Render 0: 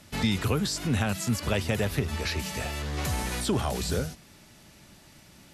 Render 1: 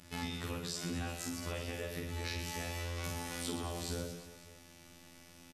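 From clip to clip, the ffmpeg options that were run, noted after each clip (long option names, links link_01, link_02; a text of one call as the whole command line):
ffmpeg -i in.wav -af "acompressor=threshold=-32dB:ratio=6,afftfilt=real='hypot(re,im)*cos(PI*b)':imag='0':win_size=2048:overlap=0.75,aecho=1:1:50|120|218|355.2|547.3:0.631|0.398|0.251|0.158|0.1,volume=-2dB" out.wav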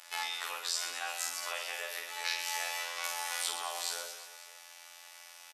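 ffmpeg -i in.wav -af "highpass=frequency=730:width=0.5412,highpass=frequency=730:width=1.3066,volume=7.5dB" out.wav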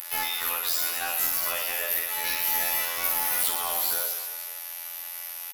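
ffmpeg -i in.wav -af "asoftclip=type=tanh:threshold=-28.5dB,aexciter=amount=10.3:drive=6.2:freq=11000,aeval=exprs='0.299*(cos(1*acos(clip(val(0)/0.299,-1,1)))-cos(1*PI/2))+0.075*(cos(3*acos(clip(val(0)/0.299,-1,1)))-cos(3*PI/2))+0.0944*(cos(5*acos(clip(val(0)/0.299,-1,1)))-cos(5*PI/2))+0.00473*(cos(6*acos(clip(val(0)/0.299,-1,1)))-cos(6*PI/2))':channel_layout=same,volume=3dB" out.wav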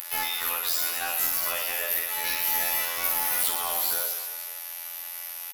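ffmpeg -i in.wav -af "acompressor=mode=upward:threshold=-35dB:ratio=2.5" out.wav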